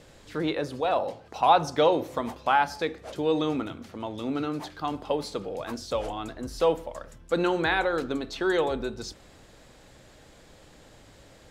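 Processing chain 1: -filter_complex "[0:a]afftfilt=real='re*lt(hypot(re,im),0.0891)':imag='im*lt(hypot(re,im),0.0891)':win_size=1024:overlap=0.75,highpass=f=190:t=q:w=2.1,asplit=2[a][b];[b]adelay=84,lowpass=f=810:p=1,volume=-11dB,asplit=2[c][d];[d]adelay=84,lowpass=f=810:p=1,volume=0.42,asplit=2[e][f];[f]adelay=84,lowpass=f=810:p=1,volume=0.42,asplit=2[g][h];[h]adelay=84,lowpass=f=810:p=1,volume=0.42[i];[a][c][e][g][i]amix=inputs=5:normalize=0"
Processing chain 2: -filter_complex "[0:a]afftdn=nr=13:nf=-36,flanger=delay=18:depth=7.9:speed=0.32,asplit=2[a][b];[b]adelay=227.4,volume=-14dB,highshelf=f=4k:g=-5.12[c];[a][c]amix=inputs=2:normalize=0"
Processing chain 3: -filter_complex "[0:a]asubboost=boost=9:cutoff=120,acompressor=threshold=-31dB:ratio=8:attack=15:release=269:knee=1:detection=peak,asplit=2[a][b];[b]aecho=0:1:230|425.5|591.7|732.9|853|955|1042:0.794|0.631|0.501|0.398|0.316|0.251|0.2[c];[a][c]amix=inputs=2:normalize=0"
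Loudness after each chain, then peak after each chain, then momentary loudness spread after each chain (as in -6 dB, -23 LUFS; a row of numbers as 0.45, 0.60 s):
-38.0, -30.5, -33.0 LUFS; -19.5, -10.5, -16.0 dBFS; 17, 13, 9 LU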